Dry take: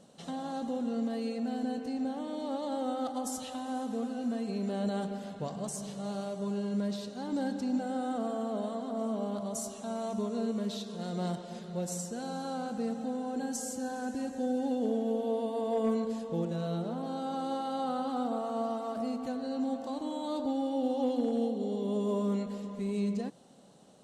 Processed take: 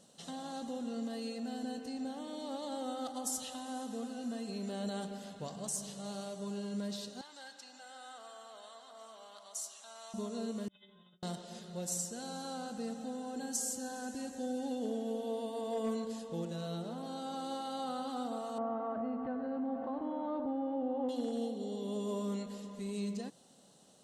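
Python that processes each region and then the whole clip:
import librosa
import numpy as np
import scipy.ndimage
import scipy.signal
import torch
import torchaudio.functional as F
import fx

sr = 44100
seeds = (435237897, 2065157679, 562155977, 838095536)

y = fx.chain(x, sr, fx.highpass(hz=1200.0, slope=12),
    fx.high_shelf(hz=7700.0, db=-10.0), at=(7.21, 10.14))
y = fx.chain(y, sr, fx.stiff_resonator(f0_hz=190.0, decay_s=0.72, stiffness=0.008),
    fx.resample_bad(factor=6, down='none', up='filtered'),
    fx.over_compress(threshold_db=-58.0, ratio=-0.5), at=(10.68, 11.23))
y = fx.chain(y, sr, fx.lowpass(hz=1800.0, slope=24),
    fx.env_flatten(amount_pct=50), at=(18.58, 21.09))
y = fx.high_shelf(y, sr, hz=2500.0, db=10.5)
y = fx.notch(y, sr, hz=2300.0, q=13.0)
y = y * 10.0 ** (-6.5 / 20.0)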